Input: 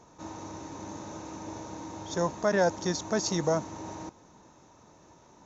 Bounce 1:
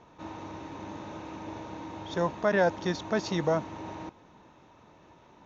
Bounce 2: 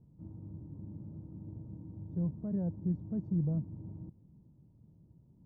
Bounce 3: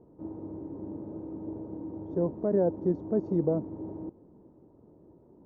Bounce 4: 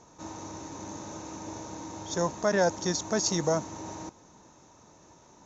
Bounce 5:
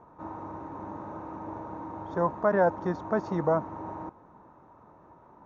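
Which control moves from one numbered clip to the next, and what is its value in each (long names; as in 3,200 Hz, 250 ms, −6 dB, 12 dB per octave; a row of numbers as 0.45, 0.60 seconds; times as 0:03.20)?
low-pass with resonance, frequency: 3,000, 150, 390, 7,700, 1,200 Hertz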